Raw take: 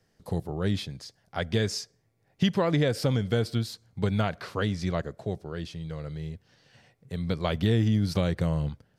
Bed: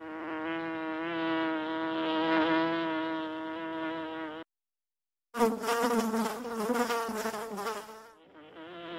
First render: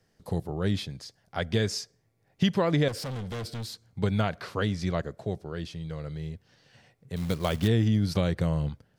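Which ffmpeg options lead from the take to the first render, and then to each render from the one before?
-filter_complex "[0:a]asettb=1/sr,asplit=3[a][b][c];[a]atrim=end=2.884[d];[b]atrim=start=2.88:end=3.87,asetpts=PTS-STARTPTS,afade=t=in:d=0.004:c=qsin,afade=t=out:st=0.986:d=0.004:c=qsin,volume=32.5dB,asoftclip=hard,volume=-32.5dB[e];[c]atrim=start=3.866[f];[d][e]acrossfade=d=0.004:c1=hsin:c2=qsin[g];[g][f]acrossfade=d=0.004:c1=qsin:c2=hsin,asettb=1/sr,asplit=3[h][i][j];[h]atrim=end=7.164[k];[i]atrim=start=7.16:end=7.68,asetpts=PTS-STARTPTS,afade=t=in:d=0.004:c=qsin,afade=t=out:st=0.516:d=0.004:c=qsin,acrusher=bits=4:mode=log:mix=0:aa=0.000001[l];[j]atrim=start=7.676[m];[k][l]acrossfade=d=0.004:c1=hsin:c2=qsin[n];[n][m]acrossfade=d=0.004:c1=qsin:c2=hsin"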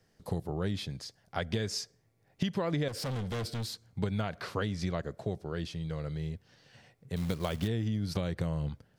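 -af "acompressor=threshold=-28dB:ratio=6"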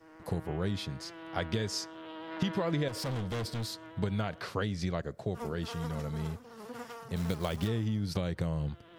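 -filter_complex "[1:a]volume=-14.5dB[a];[0:a][a]amix=inputs=2:normalize=0"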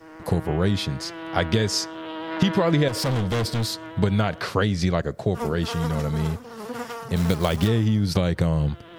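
-af "volume=11dB"

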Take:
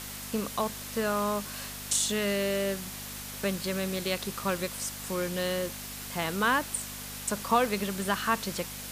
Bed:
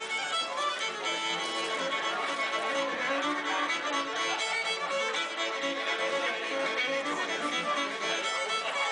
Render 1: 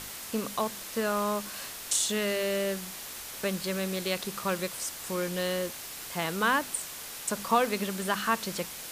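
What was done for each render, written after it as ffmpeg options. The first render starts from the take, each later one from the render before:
-af "bandreject=f=50:t=h:w=4,bandreject=f=100:t=h:w=4,bandreject=f=150:t=h:w=4,bandreject=f=200:t=h:w=4,bandreject=f=250:t=h:w=4"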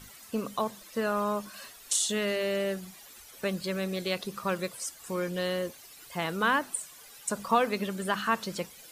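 -af "afftdn=nr=14:nf=-41"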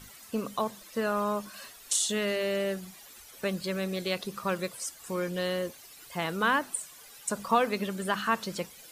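-af anull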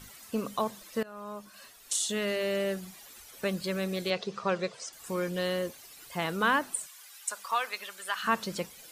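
-filter_complex "[0:a]asettb=1/sr,asplit=3[a][b][c];[a]atrim=end=4.104[d];[b]atrim=start=4.1:end=4.93,asetpts=PTS-STARTPTS,afade=t=in:d=0.004:c=qsin,afade=t=out:st=0.826:d=0.004:c=qsin,highpass=110,equalizer=f=280:t=q:w=4:g=-9,equalizer=f=440:t=q:w=4:g=7,equalizer=f=700:t=q:w=4:g=4,lowpass=f=6.4k:w=0.5412,lowpass=f=6.4k:w=1.3066[e];[c]atrim=start=4.926[f];[d][e]acrossfade=d=0.004:c1=hsin:c2=qsin[g];[g][f]acrossfade=d=0.004:c1=qsin:c2=hsin,asplit=3[h][i][j];[h]afade=t=out:st=6.86:d=0.02[k];[i]highpass=1.1k,afade=t=in:st=6.86:d=0.02,afade=t=out:st=8.23:d=0.02[l];[j]afade=t=in:st=8.23:d=0.02[m];[k][l][m]amix=inputs=3:normalize=0,asplit=2[n][o];[n]atrim=end=1.03,asetpts=PTS-STARTPTS,afade=t=out:st=1.026:d=0.004:c=hsin:silence=0.0794328[p];[o]atrim=start=1.03,asetpts=PTS-STARTPTS,afade=t=in:d=1.9:c=qsin:silence=0.0794328[q];[p][q]concat=n=2:v=0:a=1"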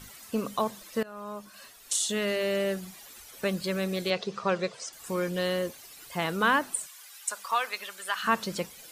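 -af "volume=2dB"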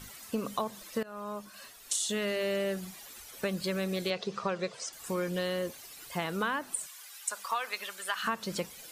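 -af "acompressor=threshold=-28dB:ratio=5"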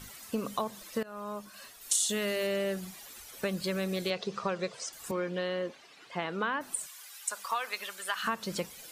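-filter_complex "[0:a]asettb=1/sr,asplit=3[a][b][c];[a]atrim=end=1.814[d];[b]atrim=start=1.81:end=2.47,asetpts=PTS-STARTPTS,afade=t=in:d=0.004:c=qsin,afade=t=out:st=0.656:d=0.004:c=qsin,highshelf=f=7.3k:g=7.5[e];[c]atrim=start=2.466[f];[d][e]acrossfade=d=0.004:c1=hsin:c2=qsin[g];[g][f]acrossfade=d=0.004:c1=qsin:c2=hsin,asettb=1/sr,asplit=3[h][i][j];[h]atrim=end=5.114[k];[i]atrim=start=5.11:end=6.61,asetpts=PTS-STARTPTS,afade=t=in:d=0.004:c=qsin,afade=t=out:st=1.496:d=0.004:c=qsin,highpass=190,lowpass=3.5k[l];[j]atrim=start=6.606[m];[k][l]acrossfade=d=0.004:c1=hsin:c2=qsin[n];[n][m]acrossfade=d=0.004:c1=qsin:c2=hsin"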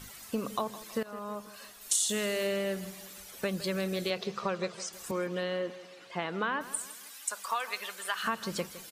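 -af "aecho=1:1:161|322|483|644:0.168|0.0806|0.0387|0.0186"

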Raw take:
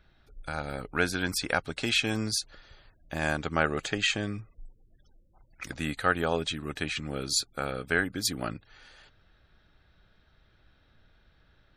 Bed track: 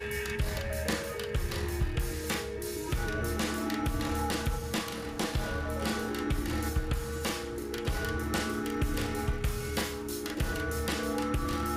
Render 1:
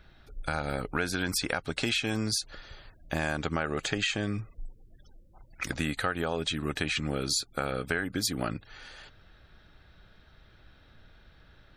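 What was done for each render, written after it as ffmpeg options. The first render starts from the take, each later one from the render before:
-filter_complex "[0:a]asplit=2[a][b];[b]alimiter=limit=-20.5dB:level=0:latency=1:release=38,volume=0.5dB[c];[a][c]amix=inputs=2:normalize=0,acompressor=threshold=-26dB:ratio=6"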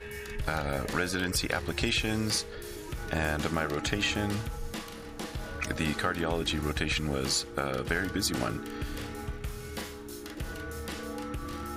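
-filter_complex "[1:a]volume=-6dB[a];[0:a][a]amix=inputs=2:normalize=0"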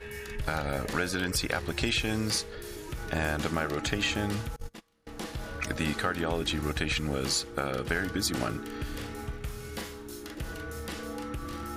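-filter_complex "[0:a]asettb=1/sr,asplit=3[a][b][c];[a]atrim=end=4.564[d];[b]atrim=start=4.56:end=5.07,asetpts=PTS-STARTPTS,afade=t=in:d=0.004:c=qsin,afade=t=out:st=0.506:d=0.004:c=qsin,agate=range=-29dB:threshold=-35dB:ratio=16:release=100:detection=peak[e];[c]atrim=start=5.066[f];[d][e]acrossfade=d=0.004:c1=hsin:c2=qsin[g];[g][f]acrossfade=d=0.004:c1=qsin:c2=hsin"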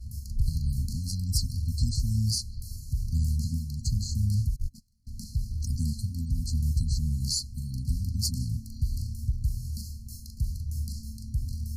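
-af "afftfilt=real='re*(1-between(b*sr/4096,260,4100))':imag='im*(1-between(b*sr/4096,260,4100))':win_size=4096:overlap=0.75,lowshelf=f=140:t=q:w=1.5:g=9"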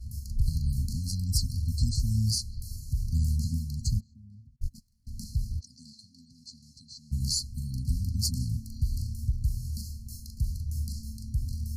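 -filter_complex "[0:a]asplit=3[a][b][c];[a]afade=t=out:st=3.99:d=0.02[d];[b]bandpass=f=430:t=q:w=4.6,afade=t=in:st=3.99:d=0.02,afade=t=out:st=4.61:d=0.02[e];[c]afade=t=in:st=4.61:d=0.02[f];[d][e][f]amix=inputs=3:normalize=0,asplit=3[g][h][i];[g]afade=t=out:st=5.59:d=0.02[j];[h]highpass=600,lowpass=3.9k,afade=t=in:st=5.59:d=0.02,afade=t=out:st=7.11:d=0.02[k];[i]afade=t=in:st=7.11:d=0.02[l];[j][k][l]amix=inputs=3:normalize=0"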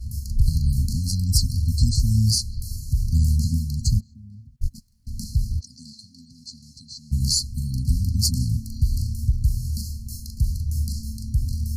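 -af "volume=7.5dB"

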